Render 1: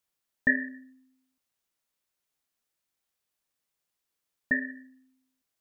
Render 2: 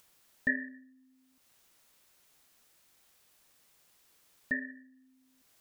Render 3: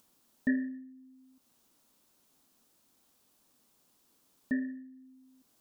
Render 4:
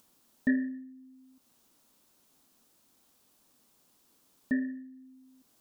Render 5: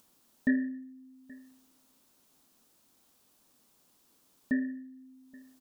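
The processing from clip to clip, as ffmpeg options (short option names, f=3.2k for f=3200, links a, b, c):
-af "acompressor=mode=upward:threshold=-41dB:ratio=2.5,volume=-6dB"
-af "equalizer=f=250:t=o:w=1:g=12,equalizer=f=1k:t=o:w=1:g=3,equalizer=f=2k:t=o:w=1:g=-7,volume=-3dB"
-af "acontrast=90,volume=-5dB"
-af "aecho=1:1:826:0.0668"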